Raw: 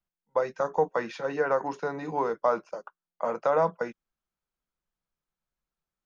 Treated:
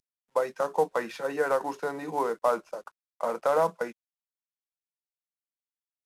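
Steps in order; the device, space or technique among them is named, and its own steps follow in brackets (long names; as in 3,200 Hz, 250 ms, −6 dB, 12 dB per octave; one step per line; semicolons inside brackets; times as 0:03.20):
early wireless headset (high-pass filter 190 Hz 12 dB per octave; variable-slope delta modulation 64 kbit/s)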